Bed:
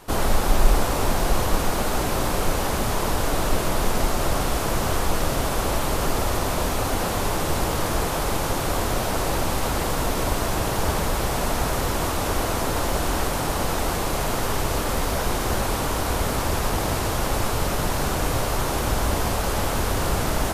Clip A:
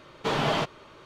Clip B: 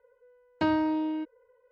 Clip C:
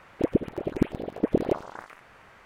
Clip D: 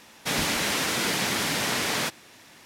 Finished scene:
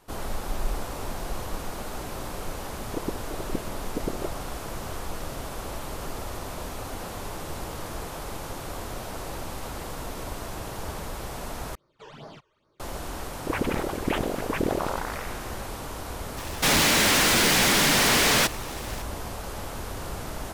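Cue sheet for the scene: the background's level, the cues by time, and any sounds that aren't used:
bed -11.5 dB
2.73 add C -8.5 dB
11.75 replace with A -17 dB + phaser stages 12, 2.4 Hz, lowest notch 210–3000 Hz
13.26 add C -6 dB + sustainer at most 27 dB/s
16.37 add D -4 dB + sample leveller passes 5
not used: B

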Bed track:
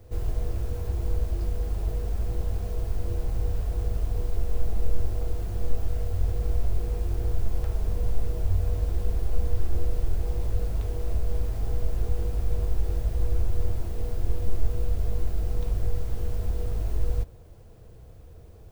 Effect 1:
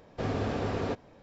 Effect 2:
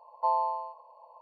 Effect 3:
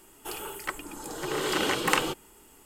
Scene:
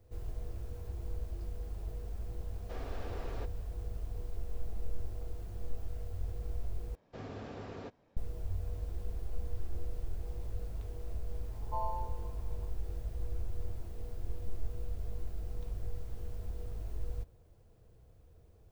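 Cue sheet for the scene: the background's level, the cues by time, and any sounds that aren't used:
bed track -12.5 dB
2.51 add 1 -12 dB + HPF 350 Hz
6.95 replace with 1 -13.5 dB
11.49 add 2 -12.5 dB + Schroeder reverb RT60 1.1 s, combs from 27 ms, DRR 1 dB
not used: 3

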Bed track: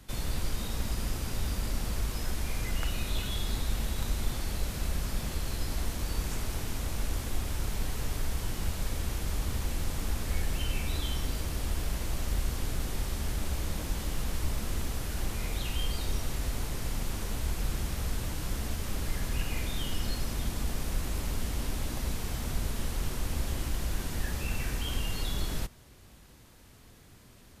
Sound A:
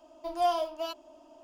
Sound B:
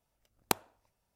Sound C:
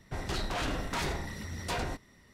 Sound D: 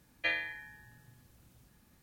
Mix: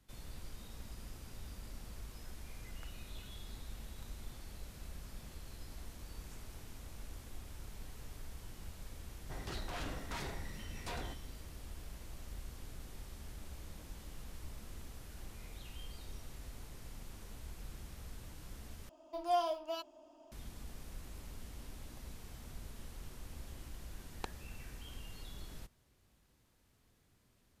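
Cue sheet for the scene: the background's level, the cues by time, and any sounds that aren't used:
bed track -16.5 dB
9.18 add C -10 dB
18.89 replace with A -5.5 dB
23.73 add B -13.5 dB + LPF 4800 Hz
not used: D

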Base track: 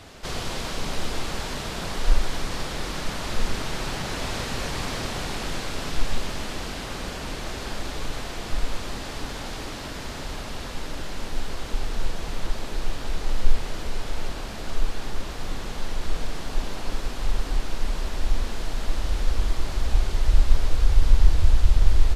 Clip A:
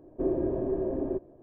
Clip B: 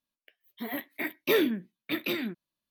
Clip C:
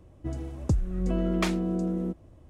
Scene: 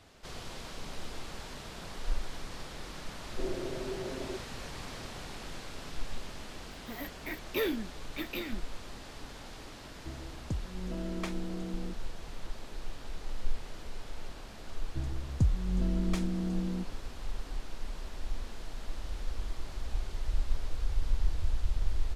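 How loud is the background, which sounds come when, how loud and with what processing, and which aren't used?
base track -13 dB
3.19 add A -8.5 dB + notch 300 Hz, Q 7.6
6.27 add B -7 dB
9.81 add C -10.5 dB
14.71 add C -12.5 dB + tone controls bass +12 dB, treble +6 dB

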